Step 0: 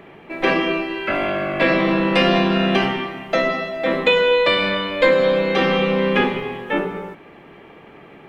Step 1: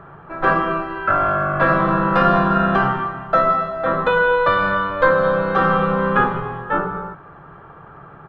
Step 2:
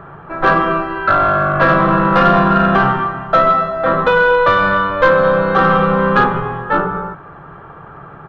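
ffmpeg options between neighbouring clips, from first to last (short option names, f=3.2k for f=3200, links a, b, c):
-af "firequalizer=gain_entry='entry(150,0);entry(220,-15);entry(1400,4);entry(2100,-23);entry(3700,-20);entry(5800,-23)':delay=0.05:min_phase=1,volume=8.5dB"
-af "asoftclip=type=tanh:threshold=-7.5dB,aresample=22050,aresample=44100,volume=5.5dB"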